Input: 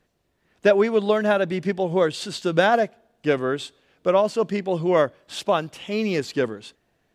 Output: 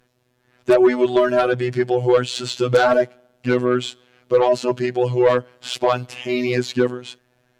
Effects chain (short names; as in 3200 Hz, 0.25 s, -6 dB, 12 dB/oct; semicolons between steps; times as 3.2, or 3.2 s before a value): robotiser 132 Hz; added harmonics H 5 -11 dB, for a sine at -3 dBFS; varispeed -6%